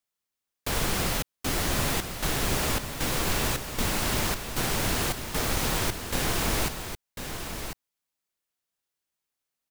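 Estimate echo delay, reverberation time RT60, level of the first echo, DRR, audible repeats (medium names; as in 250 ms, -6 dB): 1047 ms, no reverb, -8.5 dB, no reverb, 1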